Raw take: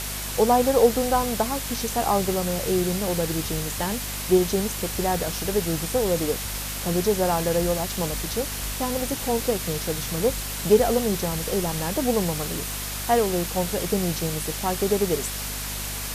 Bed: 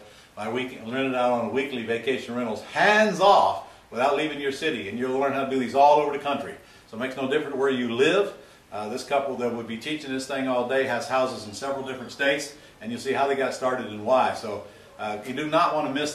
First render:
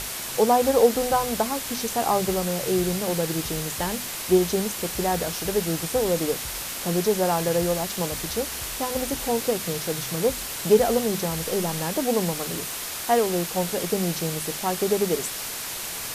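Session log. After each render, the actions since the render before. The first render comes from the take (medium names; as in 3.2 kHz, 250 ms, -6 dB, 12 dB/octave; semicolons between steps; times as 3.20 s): hum notches 50/100/150/200/250 Hz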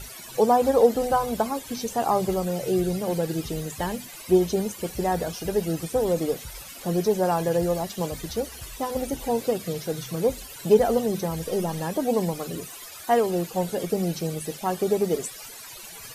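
noise reduction 16 dB, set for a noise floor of -33 dBFS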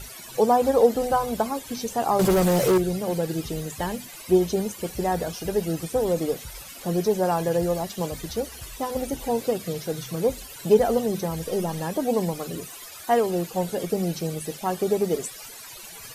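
2.19–2.78 s: waveshaping leveller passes 3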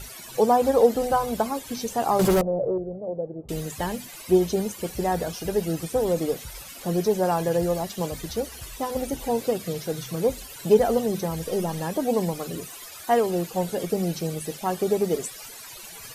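2.41–3.49 s: four-pole ladder low-pass 670 Hz, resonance 60%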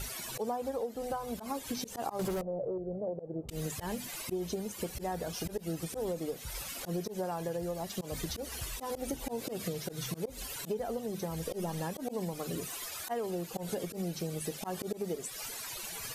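slow attack 163 ms; compression 16:1, threshold -32 dBFS, peak gain reduction 21 dB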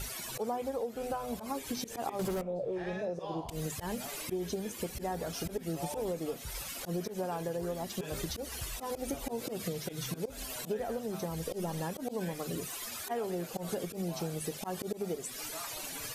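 add bed -25.5 dB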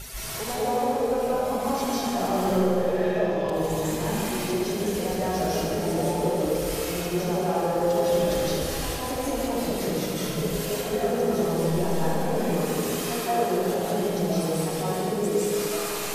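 on a send: thinning echo 75 ms, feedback 83%, high-pass 180 Hz, level -7.5 dB; on the sum: algorithmic reverb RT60 2.5 s, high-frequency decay 0.4×, pre-delay 120 ms, DRR -9.5 dB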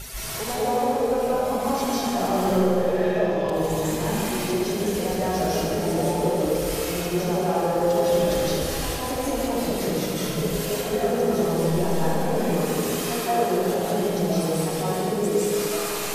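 trim +2 dB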